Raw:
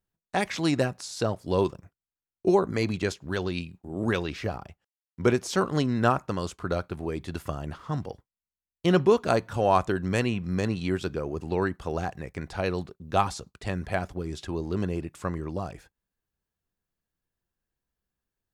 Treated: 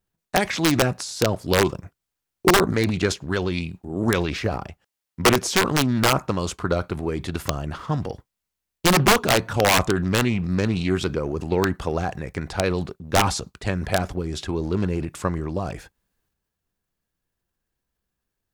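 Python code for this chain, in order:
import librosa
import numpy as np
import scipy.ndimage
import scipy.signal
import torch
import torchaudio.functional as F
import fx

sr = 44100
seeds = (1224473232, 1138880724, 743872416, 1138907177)

y = (np.mod(10.0 ** (14.5 / 20.0) * x + 1.0, 2.0) - 1.0) / 10.0 ** (14.5 / 20.0)
y = fx.transient(y, sr, attack_db=3, sustain_db=7)
y = fx.doppler_dist(y, sr, depth_ms=0.19)
y = F.gain(torch.from_numpy(y), 4.0).numpy()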